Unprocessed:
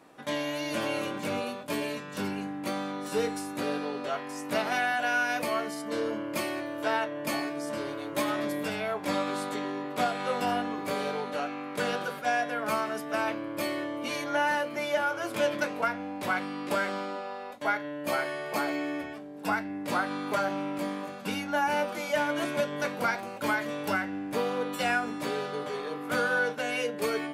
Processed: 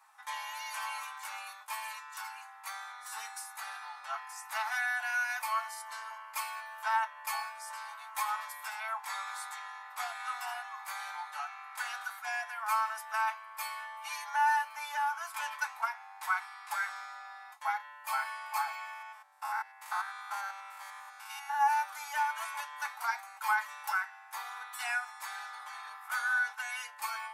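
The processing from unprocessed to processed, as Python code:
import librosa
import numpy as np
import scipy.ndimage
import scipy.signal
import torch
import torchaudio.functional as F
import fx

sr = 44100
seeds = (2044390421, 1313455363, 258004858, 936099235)

y = fx.spec_steps(x, sr, hold_ms=100, at=(18.93, 21.61))
y = scipy.signal.sosfilt(scipy.signal.cheby1(6, 1.0, 800.0, 'highpass', fs=sr, output='sos'), y)
y = fx.peak_eq(y, sr, hz=3200.0, db=-10.5, octaves=1.4)
y = y + 0.67 * np.pad(y, (int(4.6 * sr / 1000.0), 0))[:len(y)]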